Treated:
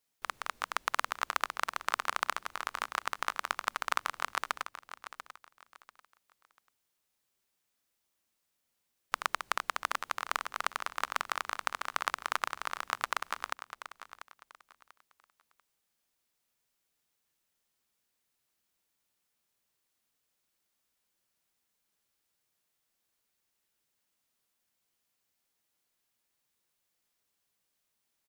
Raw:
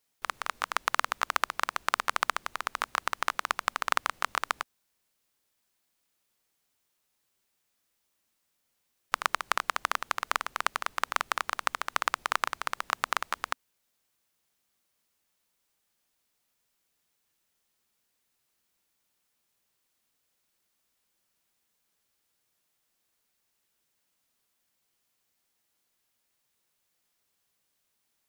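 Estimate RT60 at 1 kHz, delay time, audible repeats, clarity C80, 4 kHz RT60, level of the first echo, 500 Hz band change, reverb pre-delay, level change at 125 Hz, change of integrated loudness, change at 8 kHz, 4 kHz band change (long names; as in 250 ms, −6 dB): no reverb audible, 691 ms, 2, no reverb audible, no reverb audible, −12.5 dB, −3.5 dB, no reverb audible, can't be measured, −4.0 dB, −3.5 dB, −3.5 dB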